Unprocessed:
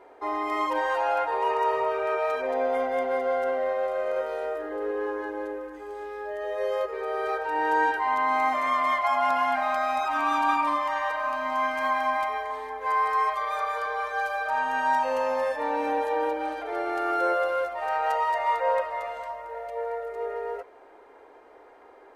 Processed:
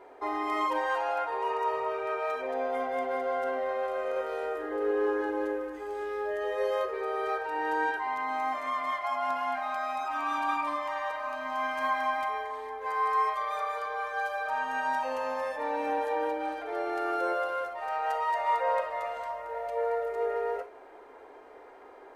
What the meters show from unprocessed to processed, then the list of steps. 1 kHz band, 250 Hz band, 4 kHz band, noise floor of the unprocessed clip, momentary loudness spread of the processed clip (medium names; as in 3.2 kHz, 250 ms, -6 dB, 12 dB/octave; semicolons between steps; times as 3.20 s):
-4.5 dB, -2.5 dB, -4.0 dB, -51 dBFS, 7 LU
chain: gated-style reverb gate 80 ms flat, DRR 10 dB; gain riding 2 s; trim -4.5 dB